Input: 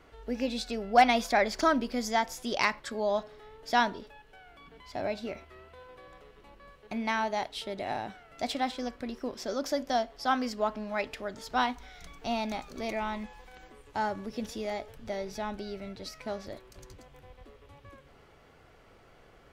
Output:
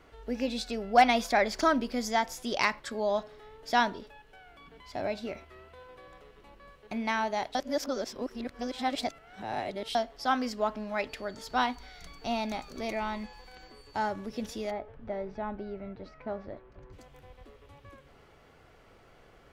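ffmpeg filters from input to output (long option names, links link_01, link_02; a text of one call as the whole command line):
ffmpeg -i in.wav -filter_complex "[0:a]asettb=1/sr,asplit=3[link_01][link_02][link_03];[link_01]atrim=end=11.094[link_04];[link_02]atrim=start=11.09:end=13.98,asetpts=PTS-STARTPTS,afade=type=in:duration=0.004:curve=qsin,afade=type=out:start_time=2.886:duration=0.004:curve=qsin,aeval=exprs='val(0)+0.00126*sin(2*PI*4500*n/s)':channel_layout=same[link_05];[link_03]atrim=start=13.976[link_06];[link_04][link_05]acrossfade=duration=0.004:curve1=hsin:curve2=qsin[link_07];[link_07][link_06]acrossfade=duration=0.004:curve1=qsin:curve2=hsin,asplit=3[link_08][link_09][link_10];[link_08]afade=type=out:start_time=14.7:duration=0.02[link_11];[link_09]lowpass=1600,afade=type=in:start_time=14.7:duration=0.02,afade=type=out:start_time=16.92:duration=0.02[link_12];[link_10]afade=type=in:start_time=16.92:duration=0.02[link_13];[link_11][link_12][link_13]amix=inputs=3:normalize=0,asplit=3[link_14][link_15][link_16];[link_14]atrim=end=7.552[link_17];[link_15]atrim=start=7.548:end=9.952,asetpts=PTS-STARTPTS,areverse[link_18];[link_16]atrim=start=9.948[link_19];[link_17][link_18]acrossfade=duration=0.004:curve1=hsin:curve2=hsin[link_20];[link_20][link_19]acrossfade=duration=0.004:curve1=hsin:curve2=hsin" out.wav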